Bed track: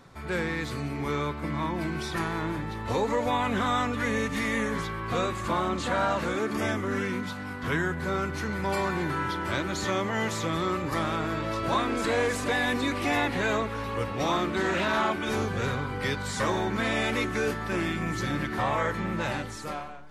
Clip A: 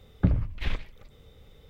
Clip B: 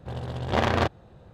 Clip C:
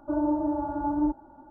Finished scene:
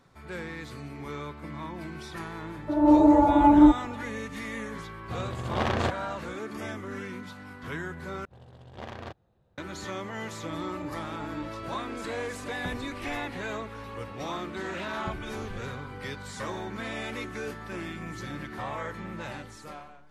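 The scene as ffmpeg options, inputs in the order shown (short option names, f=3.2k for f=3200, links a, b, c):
-filter_complex "[3:a]asplit=2[a][b];[2:a]asplit=2[c][d];[1:a]asplit=2[e][f];[0:a]volume=-8dB[g];[a]dynaudnorm=f=170:g=3:m=13.5dB[h];[c]asoftclip=type=tanh:threshold=-12.5dB[i];[e]acrossover=split=390 2900:gain=0.158 1 0.0794[j][k][l];[j][k][l]amix=inputs=3:normalize=0[m];[g]asplit=2[n][o];[n]atrim=end=8.254[p];[d]atrim=end=1.33,asetpts=PTS-STARTPTS,volume=-17.5dB[q];[o]atrim=start=9.576[r];[h]atrim=end=1.5,asetpts=PTS-STARTPTS,volume=-2.5dB,afade=t=in:d=0.004:c=hsin,afade=t=out:st=1.496:d=0.004:c=hsin,adelay=2600[s];[i]atrim=end=1.33,asetpts=PTS-STARTPTS,volume=-3dB,afade=t=in:d=0.004:c=hsin,afade=t=out:st=1.326:d=0.004:c=hsin,adelay=5030[t];[b]atrim=end=1.5,asetpts=PTS-STARTPTS,volume=-13.5dB,afade=t=in:d=0.004:c=hsin,afade=t=out:st=1.496:d=0.004:c=hsin,adelay=10360[u];[m]atrim=end=1.69,asetpts=PTS-STARTPTS,volume=-1.5dB,afade=t=in:d=0.004:c=hsin,afade=t=out:st=1.686:d=0.004:c=hsin,adelay=12410[v];[f]atrim=end=1.69,asetpts=PTS-STARTPTS,volume=-16dB,afade=t=in:d=0.004:c=hsin,afade=t=out:st=1.686:d=0.004:c=hsin,adelay=14830[w];[p][q]acrossfade=d=0.004:c1=hsin:c2=hsin[x];[x][r]acrossfade=d=0.004:c1=hsin:c2=hsin[y];[y][s][t][u][v][w]amix=inputs=6:normalize=0"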